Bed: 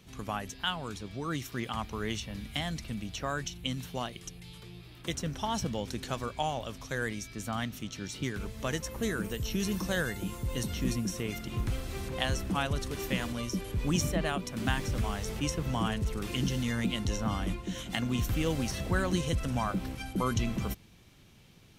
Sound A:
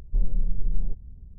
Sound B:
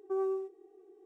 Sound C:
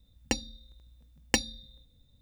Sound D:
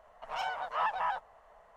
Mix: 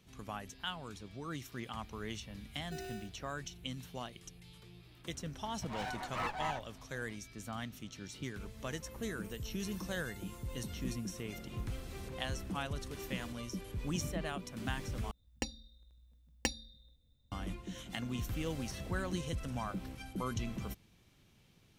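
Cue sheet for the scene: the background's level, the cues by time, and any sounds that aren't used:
bed −8 dB
0:02.61: mix in B −14 dB + sample-rate reduction 1,100 Hz
0:05.40: mix in D −4.5 dB + lower of the sound and its delayed copy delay 9.4 ms
0:11.15: mix in A −1 dB + high-pass filter 470 Hz
0:15.11: overwrite with C −9 dB + parametric band 66 Hz +7 dB 0.29 octaves

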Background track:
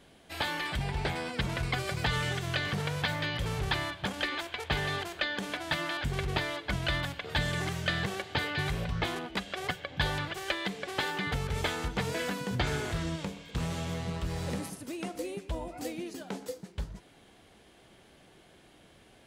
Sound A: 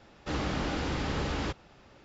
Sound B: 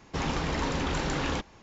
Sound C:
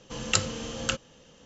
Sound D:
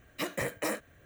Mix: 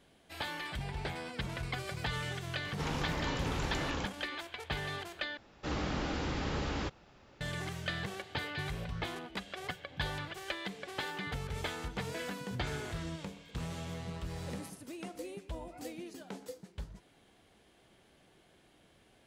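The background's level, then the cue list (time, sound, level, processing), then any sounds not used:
background track −6.5 dB
0:02.65: mix in B −7 dB
0:05.37: overwrite with A −3.5 dB
not used: C, D

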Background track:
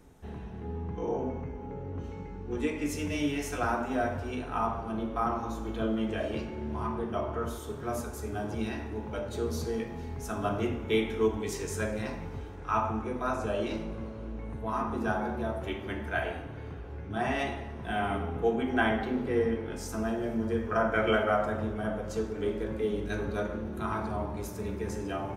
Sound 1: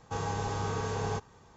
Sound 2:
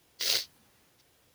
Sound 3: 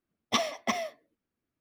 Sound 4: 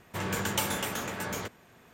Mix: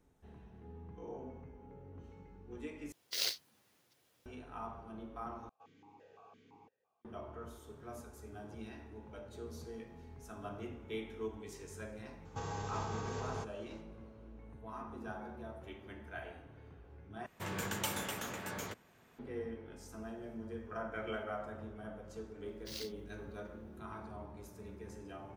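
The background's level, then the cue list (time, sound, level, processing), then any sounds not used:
background track −14.5 dB
0:02.92: overwrite with 2 −7 dB + high-pass filter 110 Hz
0:05.49: overwrite with 1 −13.5 dB + formant filter that steps through the vowels 5.9 Hz
0:12.25: mix in 1 −5 dB + brickwall limiter −27 dBFS
0:17.26: overwrite with 4 −7.5 dB
0:22.46: mix in 2 −18 dB
not used: 3

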